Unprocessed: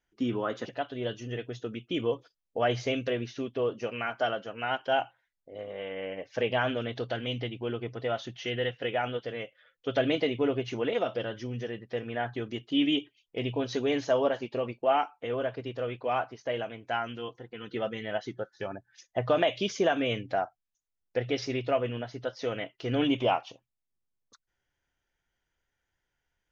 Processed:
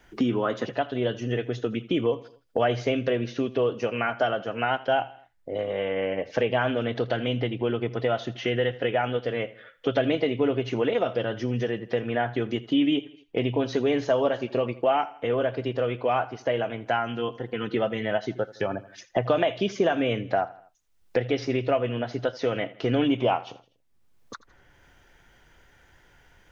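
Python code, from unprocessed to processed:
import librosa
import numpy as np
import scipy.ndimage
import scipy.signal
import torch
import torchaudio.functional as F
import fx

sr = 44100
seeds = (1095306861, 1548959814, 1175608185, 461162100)

y = fx.high_shelf(x, sr, hz=3500.0, db=-8.0)
y = fx.echo_feedback(y, sr, ms=81, feedback_pct=39, wet_db=-20)
y = fx.band_squash(y, sr, depth_pct=70)
y = y * librosa.db_to_amplitude(5.0)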